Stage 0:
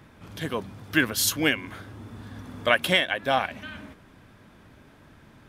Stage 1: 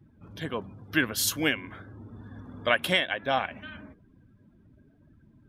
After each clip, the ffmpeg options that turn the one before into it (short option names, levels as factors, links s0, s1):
-af "afftdn=nr=22:nf=-47,volume=0.708"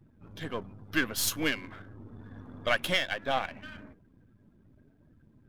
-af "aeval=exprs='if(lt(val(0),0),0.447*val(0),val(0))':c=same"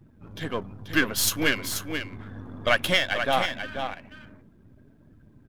-af "aecho=1:1:485:0.422,volume=1.88"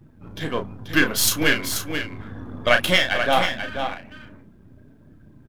-filter_complex "[0:a]asplit=2[s0][s1];[s1]adelay=33,volume=0.473[s2];[s0][s2]amix=inputs=2:normalize=0,volume=1.5"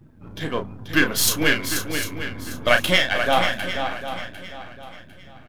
-af "aecho=1:1:751|1502|2253:0.251|0.0779|0.0241"